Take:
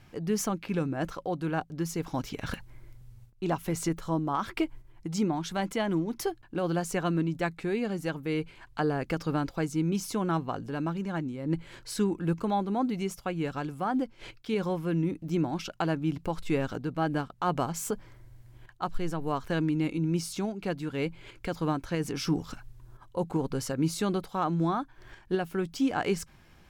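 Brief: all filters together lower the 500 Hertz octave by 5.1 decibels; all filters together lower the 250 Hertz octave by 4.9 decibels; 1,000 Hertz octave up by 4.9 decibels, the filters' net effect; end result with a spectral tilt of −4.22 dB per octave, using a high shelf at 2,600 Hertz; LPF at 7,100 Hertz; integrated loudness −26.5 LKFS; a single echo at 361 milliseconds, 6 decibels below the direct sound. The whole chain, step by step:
low-pass filter 7,100 Hz
parametric band 250 Hz −5.5 dB
parametric band 500 Hz −7.5 dB
parametric band 1,000 Hz +8 dB
high-shelf EQ 2,600 Hz +7.5 dB
single-tap delay 361 ms −6 dB
level +4.5 dB

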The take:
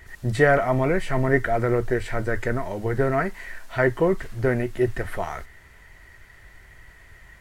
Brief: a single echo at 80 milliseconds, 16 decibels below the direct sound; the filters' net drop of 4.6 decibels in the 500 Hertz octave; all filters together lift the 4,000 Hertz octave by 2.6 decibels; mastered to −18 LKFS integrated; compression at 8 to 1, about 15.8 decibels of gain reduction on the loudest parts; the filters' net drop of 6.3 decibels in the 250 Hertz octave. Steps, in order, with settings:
parametric band 250 Hz −8 dB
parametric band 500 Hz −3.5 dB
parametric band 4,000 Hz +3.5 dB
downward compressor 8 to 1, threshold −32 dBFS
single-tap delay 80 ms −16 dB
level +19.5 dB

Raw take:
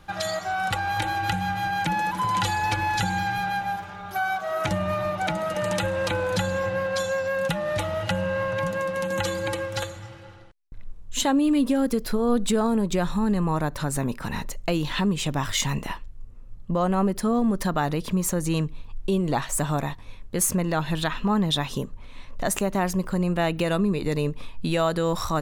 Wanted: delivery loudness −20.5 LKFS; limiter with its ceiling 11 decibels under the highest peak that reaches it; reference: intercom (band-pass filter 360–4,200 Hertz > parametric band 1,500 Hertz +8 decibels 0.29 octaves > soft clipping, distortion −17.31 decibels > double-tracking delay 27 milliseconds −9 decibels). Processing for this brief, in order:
brickwall limiter −20 dBFS
band-pass filter 360–4,200 Hz
parametric band 1,500 Hz +8 dB 0.29 octaves
soft clipping −21.5 dBFS
double-tracking delay 27 ms −9 dB
level +10.5 dB

